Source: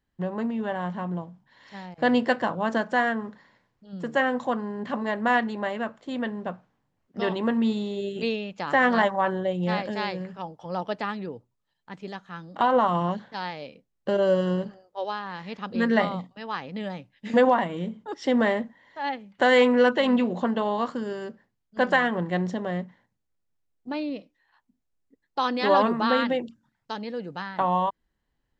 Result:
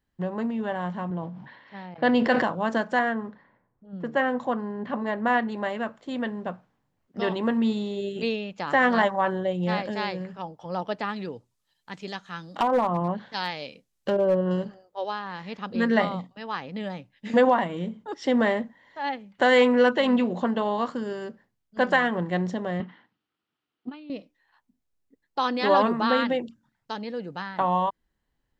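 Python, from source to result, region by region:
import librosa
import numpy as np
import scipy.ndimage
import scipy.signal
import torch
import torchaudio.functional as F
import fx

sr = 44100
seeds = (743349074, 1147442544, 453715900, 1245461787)

y = fx.chain(x, sr, fx.env_lowpass(base_hz=2500.0, full_db=-21.5),
    fx.bandpass_edges(low_hz=110.0, high_hz=5500.0),
    fx.sustainer(db_per_s=54.0), at=(1.1, 2.43))
y = fx.chain(y, sr, fx.env_lowpass(base_hz=1200.0, full_db=-24.0),
    fx.high_shelf(hz=3300.0, db=-8.0), at=(2.99, 5.52))
y = fx.chain(y, sr, fx.env_lowpass_down(base_hz=840.0, full_db=-19.5),
    fx.high_shelf(hz=2500.0, db=11.5),
    fx.clip_hard(threshold_db=-16.0), at=(11.16, 14.51))
y = fx.chain(y, sr, fx.cabinet(low_hz=210.0, low_slope=12, high_hz=4500.0, hz=(310.0, 560.0, 1300.0, 3000.0), db=(4, -8, 8, 8)),
    fx.over_compress(threshold_db=-35.0, ratio=-0.5), at=(22.8, 24.1))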